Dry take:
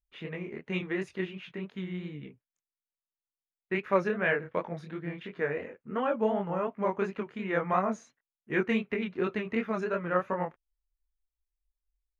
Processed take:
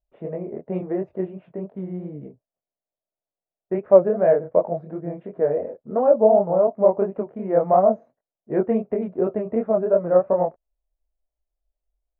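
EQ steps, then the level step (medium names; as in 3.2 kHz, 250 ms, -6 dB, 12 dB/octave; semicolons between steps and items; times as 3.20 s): resonant low-pass 640 Hz, resonance Q 4.9; +4.5 dB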